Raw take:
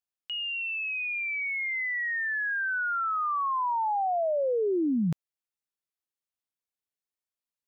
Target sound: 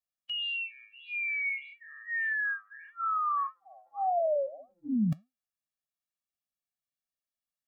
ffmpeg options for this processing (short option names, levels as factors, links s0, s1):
-af "flanger=delay=3.8:depth=5.6:regen=86:speed=1.7:shape=sinusoidal,afftfilt=real='re*eq(mod(floor(b*sr/1024/270),2),0)':imag='im*eq(mod(floor(b*sr/1024/270),2),0)':win_size=1024:overlap=0.75,volume=1.58"